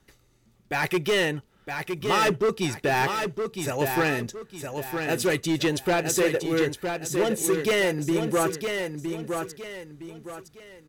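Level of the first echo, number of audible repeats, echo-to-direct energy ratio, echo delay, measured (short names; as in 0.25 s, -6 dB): -6.0 dB, 3, -5.5 dB, 0.963 s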